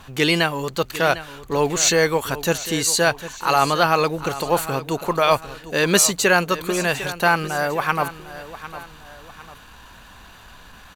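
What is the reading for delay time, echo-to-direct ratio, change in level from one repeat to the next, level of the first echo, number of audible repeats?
752 ms, −14.0 dB, −7.5 dB, −14.5 dB, 2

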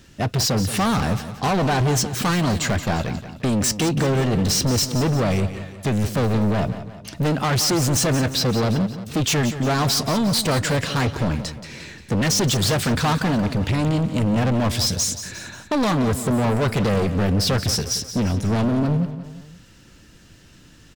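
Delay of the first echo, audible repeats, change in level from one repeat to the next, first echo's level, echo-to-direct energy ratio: 177 ms, 3, −6.0 dB, −12.0 dB, −11.0 dB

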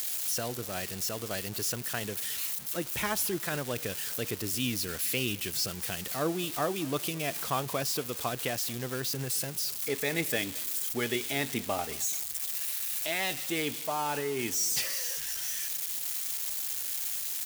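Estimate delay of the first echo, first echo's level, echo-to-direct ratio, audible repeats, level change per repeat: 216 ms, −22.5 dB, −21.5 dB, 2, −7.0 dB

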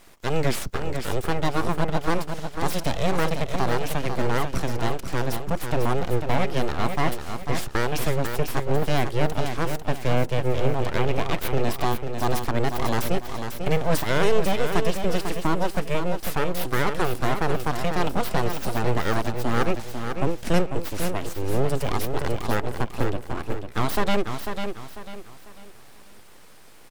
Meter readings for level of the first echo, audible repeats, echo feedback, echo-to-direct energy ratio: −7.0 dB, 3, 34%, −6.5 dB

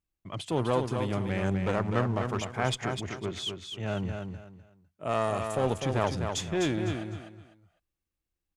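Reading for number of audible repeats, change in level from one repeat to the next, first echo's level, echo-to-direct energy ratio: 3, −11.5 dB, −6.0 dB, −5.5 dB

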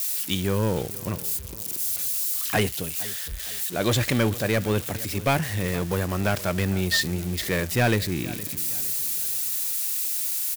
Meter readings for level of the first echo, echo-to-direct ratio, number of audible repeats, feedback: −18.0 dB, −17.0 dB, 3, 41%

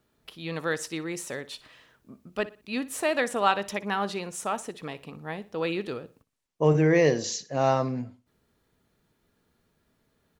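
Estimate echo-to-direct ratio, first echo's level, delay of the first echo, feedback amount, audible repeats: −17.5 dB, −18.0 dB, 60 ms, 33%, 2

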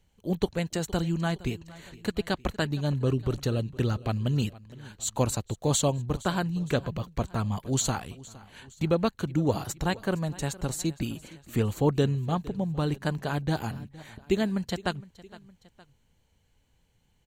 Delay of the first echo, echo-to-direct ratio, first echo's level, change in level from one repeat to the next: 463 ms, −19.0 dB, −20.0 dB, −5.5 dB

